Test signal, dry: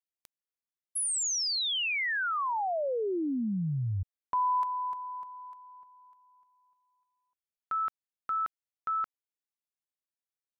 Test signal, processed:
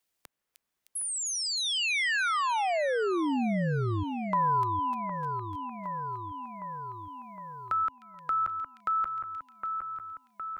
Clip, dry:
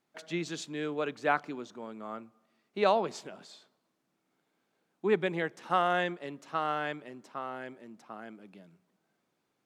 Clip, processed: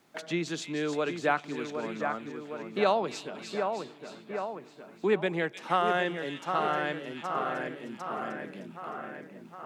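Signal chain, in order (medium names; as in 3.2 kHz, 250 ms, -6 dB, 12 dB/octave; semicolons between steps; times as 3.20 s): two-band feedback delay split 2.3 kHz, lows 762 ms, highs 307 ms, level -8 dB; three bands compressed up and down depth 40%; trim +2.5 dB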